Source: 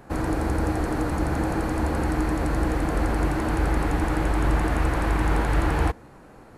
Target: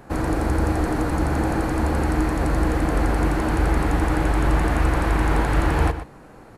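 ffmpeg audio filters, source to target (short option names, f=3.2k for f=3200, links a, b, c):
-filter_complex "[0:a]asplit=2[a][b];[b]adelay=122.4,volume=-11dB,highshelf=f=4k:g=-2.76[c];[a][c]amix=inputs=2:normalize=0,volume=2.5dB"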